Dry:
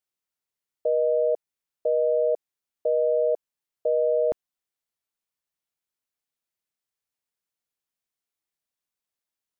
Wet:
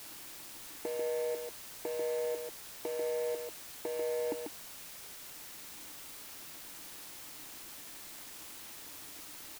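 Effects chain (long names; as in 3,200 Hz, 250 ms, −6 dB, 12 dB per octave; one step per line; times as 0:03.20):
running median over 41 samples
upward compression, threshold −28 dBFS
formant filter u
on a send: single-tap delay 142 ms −4.5 dB
on the sum: bit-depth reduction 10 bits, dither triangular
level +12 dB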